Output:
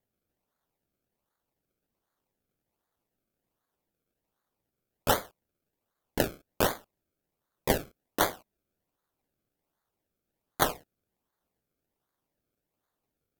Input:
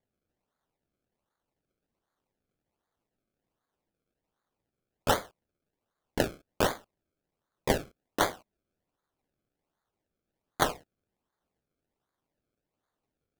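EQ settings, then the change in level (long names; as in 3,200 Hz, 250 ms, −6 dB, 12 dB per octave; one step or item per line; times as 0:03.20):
parametric band 15,000 Hz +10.5 dB 0.62 octaves
0.0 dB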